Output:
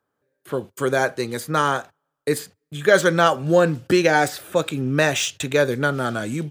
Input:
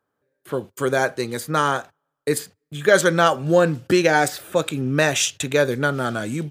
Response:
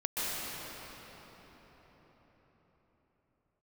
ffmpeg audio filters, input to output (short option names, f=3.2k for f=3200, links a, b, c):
-filter_complex "[0:a]acrossover=split=840|4300[a][b][c];[c]asoftclip=type=tanh:threshold=-25dB[d];[a][b][d]amix=inputs=3:normalize=0"